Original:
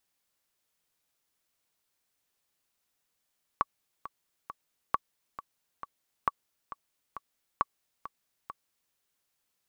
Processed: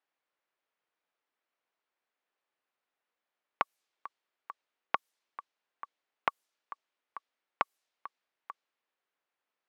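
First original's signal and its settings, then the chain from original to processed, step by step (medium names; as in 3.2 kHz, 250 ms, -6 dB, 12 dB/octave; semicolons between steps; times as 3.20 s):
metronome 135 bpm, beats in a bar 3, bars 4, 1.13 kHz, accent 14.5 dB -11.5 dBFS
level-controlled noise filter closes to 2.2 kHz, open at -35 dBFS; high-pass 360 Hz 12 dB/octave; loudspeaker Doppler distortion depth 0.36 ms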